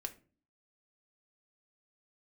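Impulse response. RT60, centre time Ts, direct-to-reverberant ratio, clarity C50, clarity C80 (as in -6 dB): 0.40 s, 6 ms, 4.0 dB, 16.0 dB, 21.5 dB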